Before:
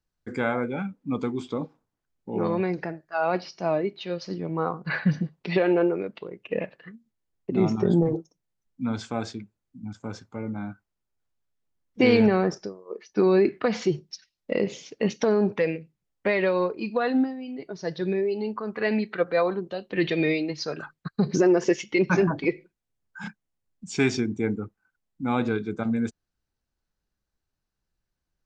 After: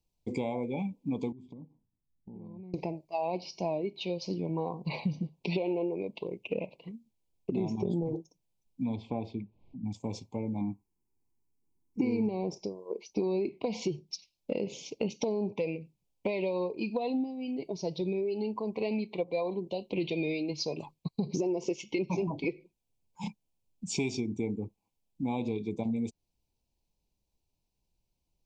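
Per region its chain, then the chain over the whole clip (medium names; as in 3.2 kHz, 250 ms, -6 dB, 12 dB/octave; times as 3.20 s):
1.32–2.74 s: FFT filter 210 Hz 0 dB, 510 Hz -15 dB, 1.9 kHz -15 dB, 2.7 kHz -25 dB + compression 8:1, threshold -45 dBFS
8.95–9.86 s: distance through air 430 m + upward compressor, threshold -41 dBFS
10.61–12.29 s: peaking EQ 370 Hz +11.5 dB 1.8 oct + static phaser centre 1.4 kHz, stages 4
whole clip: elliptic band-stop 1–2.3 kHz, stop band 40 dB; compression 4:1, threshold -32 dBFS; trim +2 dB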